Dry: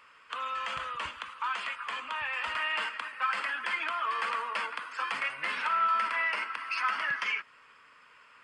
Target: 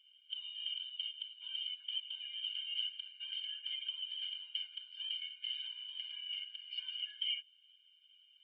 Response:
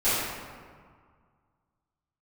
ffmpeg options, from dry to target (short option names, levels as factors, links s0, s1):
-af "asuperpass=centerf=3100:order=4:qfactor=7.2,afftfilt=real='re*eq(mod(floor(b*sr/1024/350),2),0)':imag='im*eq(mod(floor(b*sr/1024/350),2),0)':win_size=1024:overlap=0.75,volume=2.82"